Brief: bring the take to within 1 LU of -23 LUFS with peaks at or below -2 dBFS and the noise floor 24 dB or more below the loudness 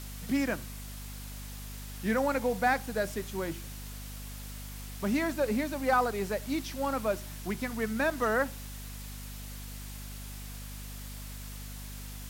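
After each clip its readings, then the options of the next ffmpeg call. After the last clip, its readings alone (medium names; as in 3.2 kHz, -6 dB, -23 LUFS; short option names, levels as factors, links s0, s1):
hum 50 Hz; highest harmonic 250 Hz; hum level -40 dBFS; noise floor -42 dBFS; noise floor target -58 dBFS; loudness -33.5 LUFS; peak level -15.0 dBFS; loudness target -23.0 LUFS
-> -af "bandreject=f=50:t=h:w=4,bandreject=f=100:t=h:w=4,bandreject=f=150:t=h:w=4,bandreject=f=200:t=h:w=4,bandreject=f=250:t=h:w=4"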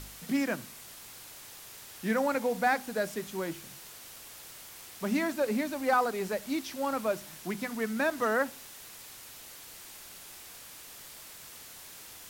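hum not found; noise floor -49 dBFS; noise floor target -55 dBFS
-> -af "afftdn=nr=6:nf=-49"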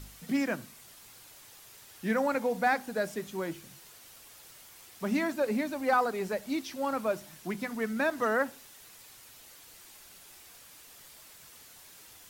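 noise floor -53 dBFS; noise floor target -56 dBFS
-> -af "afftdn=nr=6:nf=-53"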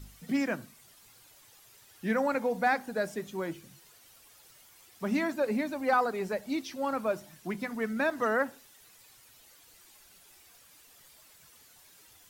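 noise floor -58 dBFS; loudness -31.5 LUFS; peak level -15.5 dBFS; loudness target -23.0 LUFS
-> -af "volume=2.66"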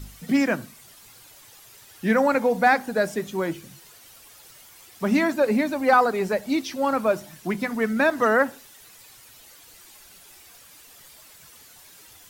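loudness -23.0 LUFS; peak level -7.0 dBFS; noise floor -50 dBFS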